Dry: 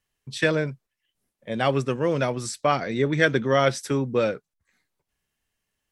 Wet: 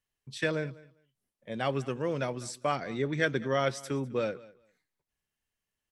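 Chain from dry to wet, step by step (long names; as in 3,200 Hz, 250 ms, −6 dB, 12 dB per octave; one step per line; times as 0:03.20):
repeating echo 201 ms, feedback 16%, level −21 dB
level −8 dB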